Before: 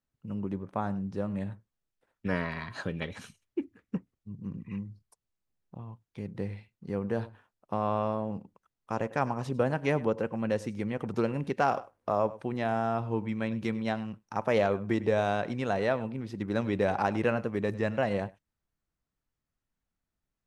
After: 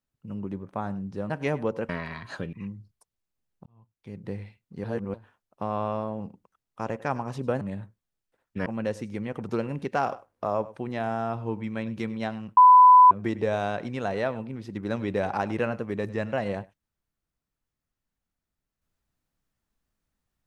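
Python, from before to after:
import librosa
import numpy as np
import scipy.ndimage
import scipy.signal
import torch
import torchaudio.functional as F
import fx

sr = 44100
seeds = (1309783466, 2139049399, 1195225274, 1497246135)

y = fx.edit(x, sr, fx.swap(start_s=1.3, length_s=1.05, other_s=9.72, other_length_s=0.59),
    fx.cut(start_s=2.99, length_s=1.65),
    fx.fade_in_span(start_s=5.77, length_s=0.6),
    fx.reverse_span(start_s=6.95, length_s=0.3),
    fx.bleep(start_s=14.22, length_s=0.54, hz=1000.0, db=-9.5), tone=tone)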